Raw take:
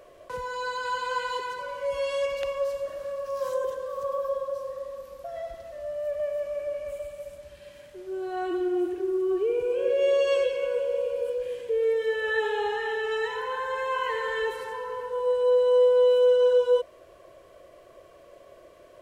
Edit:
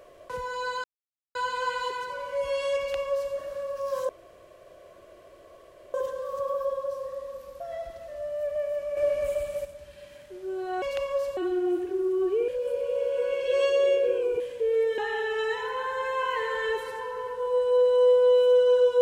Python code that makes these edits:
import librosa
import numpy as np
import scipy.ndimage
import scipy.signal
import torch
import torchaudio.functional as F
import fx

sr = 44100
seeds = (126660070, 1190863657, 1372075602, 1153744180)

y = fx.edit(x, sr, fx.insert_silence(at_s=0.84, length_s=0.51),
    fx.duplicate(start_s=2.28, length_s=0.55, to_s=8.46),
    fx.insert_room_tone(at_s=3.58, length_s=1.85),
    fx.clip_gain(start_s=6.61, length_s=0.68, db=7.0),
    fx.reverse_span(start_s=9.57, length_s=1.92),
    fx.cut(start_s=12.07, length_s=0.64), tone=tone)